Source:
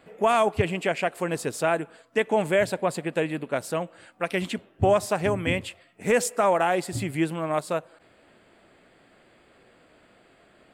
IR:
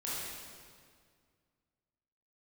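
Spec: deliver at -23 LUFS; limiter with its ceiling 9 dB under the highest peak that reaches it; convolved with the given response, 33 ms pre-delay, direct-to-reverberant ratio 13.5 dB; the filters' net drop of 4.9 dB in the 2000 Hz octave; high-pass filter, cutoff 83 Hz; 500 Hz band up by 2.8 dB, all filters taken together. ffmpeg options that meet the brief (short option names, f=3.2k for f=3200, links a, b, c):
-filter_complex "[0:a]highpass=83,equalizer=f=500:t=o:g=4,equalizer=f=2k:t=o:g=-6.5,alimiter=limit=-17.5dB:level=0:latency=1,asplit=2[a][b];[1:a]atrim=start_sample=2205,adelay=33[c];[b][c]afir=irnorm=-1:irlink=0,volume=-17dB[d];[a][d]amix=inputs=2:normalize=0,volume=5.5dB"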